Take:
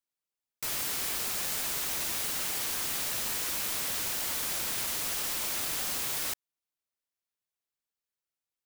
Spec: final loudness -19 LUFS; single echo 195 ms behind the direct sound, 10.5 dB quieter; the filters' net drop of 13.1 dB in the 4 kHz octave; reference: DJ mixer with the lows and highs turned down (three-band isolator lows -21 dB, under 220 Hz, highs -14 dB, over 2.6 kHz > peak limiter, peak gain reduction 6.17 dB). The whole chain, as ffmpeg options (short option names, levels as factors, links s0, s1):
-filter_complex "[0:a]acrossover=split=220 2600:gain=0.0891 1 0.2[s0][s1][s2];[s0][s1][s2]amix=inputs=3:normalize=0,equalizer=f=4000:t=o:g=-5.5,aecho=1:1:195:0.299,volume=17.8,alimiter=limit=0.299:level=0:latency=1"